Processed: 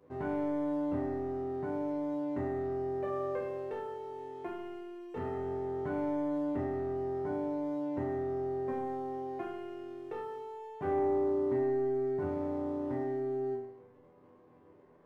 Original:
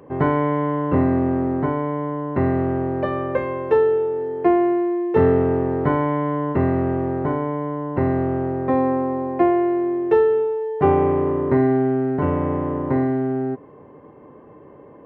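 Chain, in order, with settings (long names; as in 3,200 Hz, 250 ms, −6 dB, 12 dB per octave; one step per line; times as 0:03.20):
leveller curve on the samples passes 1
downward compressor 2 to 1, threshold −18 dBFS, peak gain reduction 5 dB
resonators tuned to a chord E2 minor, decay 0.71 s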